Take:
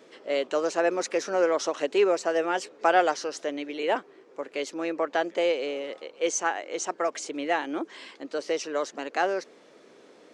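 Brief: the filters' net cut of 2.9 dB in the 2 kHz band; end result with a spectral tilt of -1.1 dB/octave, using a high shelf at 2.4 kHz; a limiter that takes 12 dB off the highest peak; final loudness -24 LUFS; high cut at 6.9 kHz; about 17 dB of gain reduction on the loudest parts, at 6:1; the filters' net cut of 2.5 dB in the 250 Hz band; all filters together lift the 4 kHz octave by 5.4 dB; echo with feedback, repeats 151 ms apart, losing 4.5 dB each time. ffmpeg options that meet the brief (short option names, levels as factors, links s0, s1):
-af "lowpass=6900,equalizer=f=250:t=o:g=-4,equalizer=f=2000:t=o:g=-9,highshelf=f=2400:g=8.5,equalizer=f=4000:t=o:g=3.5,acompressor=threshold=0.0141:ratio=6,alimiter=level_in=3.16:limit=0.0631:level=0:latency=1,volume=0.316,aecho=1:1:151|302|453|604|755|906|1057|1208|1359:0.596|0.357|0.214|0.129|0.0772|0.0463|0.0278|0.0167|0.01,volume=7.94"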